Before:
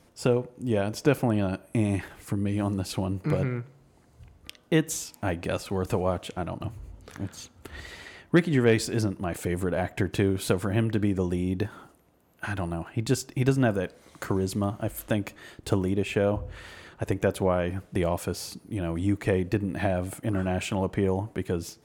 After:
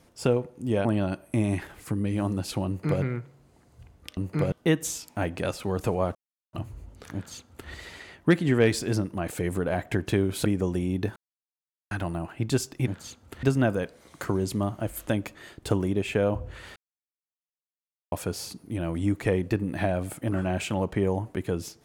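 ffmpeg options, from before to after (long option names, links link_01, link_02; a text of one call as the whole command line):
ffmpeg -i in.wav -filter_complex "[0:a]asplit=13[link_01][link_02][link_03][link_04][link_05][link_06][link_07][link_08][link_09][link_10][link_11][link_12][link_13];[link_01]atrim=end=0.852[link_14];[link_02]atrim=start=1.258:end=4.582[link_15];[link_03]atrim=start=3.078:end=3.432[link_16];[link_04]atrim=start=4.578:end=6.21,asetpts=PTS-STARTPTS,afade=type=out:start_time=1.628:duration=0.004:curve=hsin[link_17];[link_05]atrim=start=6.21:end=6.59,asetpts=PTS-STARTPTS,volume=0[link_18];[link_06]atrim=start=6.59:end=10.512,asetpts=PTS-STARTPTS,afade=type=in:duration=0.004:curve=hsin[link_19];[link_07]atrim=start=11.018:end=11.73,asetpts=PTS-STARTPTS,afade=type=out:start_time=0.708:duration=0.004:curve=hsin[link_20];[link_08]atrim=start=11.73:end=12.48,asetpts=PTS-STARTPTS,volume=0[link_21];[link_09]atrim=start=12.48:end=13.442,asetpts=PTS-STARTPTS,afade=type=in:duration=0.004:curve=hsin[link_22];[link_10]atrim=start=7.198:end=7.762[link_23];[link_11]atrim=start=13.438:end=16.77,asetpts=PTS-STARTPTS,afade=type=out:start_time=3.328:duration=0.004:curve=hsin[link_24];[link_12]atrim=start=16.77:end=18.13,asetpts=PTS-STARTPTS,volume=0[link_25];[link_13]atrim=start=18.13,asetpts=PTS-STARTPTS,afade=type=in:duration=0.004:curve=hsin[link_26];[link_14][link_15]acrossfade=duration=0.004:curve1=hsin:curve2=hsin[link_27];[link_27][link_16]acrossfade=duration=0.004:curve1=hsin:curve2=hsin[link_28];[link_17][link_18][link_19]concat=n=3:v=0:a=1[link_29];[link_28][link_29]acrossfade=duration=0.004:curve1=hsin:curve2=hsin[link_30];[link_20][link_21][link_22]concat=n=3:v=0:a=1[link_31];[link_30][link_31]acrossfade=duration=0.004:curve1=hsin:curve2=hsin[link_32];[link_32][link_23]acrossfade=duration=0.004:curve1=hsin:curve2=hsin[link_33];[link_24][link_25][link_26]concat=n=3:v=0:a=1[link_34];[link_33][link_34]acrossfade=duration=0.004:curve1=hsin:curve2=hsin" out.wav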